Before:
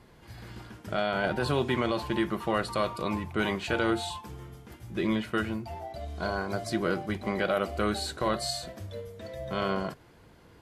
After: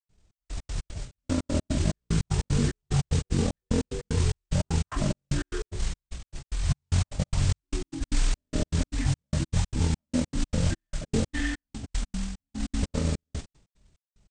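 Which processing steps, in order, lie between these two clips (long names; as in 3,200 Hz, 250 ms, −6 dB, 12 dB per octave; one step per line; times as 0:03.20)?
downward expander −42 dBFS
low-pass that shuts in the quiet parts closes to 2,200 Hz, open at −26.5 dBFS
spectral tilt −3 dB per octave
brickwall limiter −21 dBFS, peak gain reduction 10.5 dB
noise that follows the level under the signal 14 dB
change of speed 0.412×
gate pattern ".xx..x.x" 83 BPM −60 dB
tempo change 1.8×
level +6 dB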